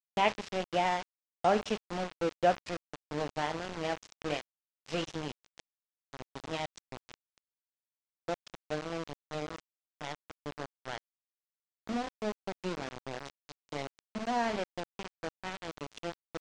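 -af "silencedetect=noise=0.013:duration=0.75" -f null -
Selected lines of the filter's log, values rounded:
silence_start: 7.14
silence_end: 8.28 | silence_duration: 1.14
silence_start: 10.98
silence_end: 11.87 | silence_duration: 0.90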